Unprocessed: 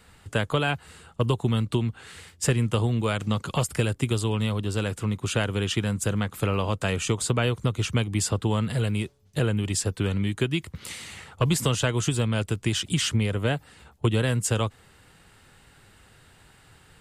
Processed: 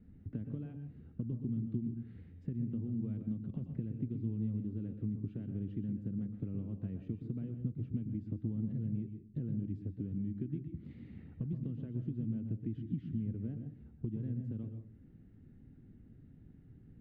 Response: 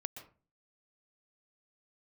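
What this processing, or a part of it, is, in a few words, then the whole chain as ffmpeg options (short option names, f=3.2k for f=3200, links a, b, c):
television next door: -filter_complex "[0:a]acompressor=threshold=-36dB:ratio=6,lowpass=310[a];[1:a]atrim=start_sample=2205[b];[a][b]afir=irnorm=-1:irlink=0,equalizer=f=250:t=o:w=1:g=11,equalizer=f=500:t=o:w=1:g=-5,equalizer=f=1k:t=o:w=1:g=-9,equalizer=f=2k:t=o:w=1:g=9,equalizer=f=4k:t=o:w=1:g=9"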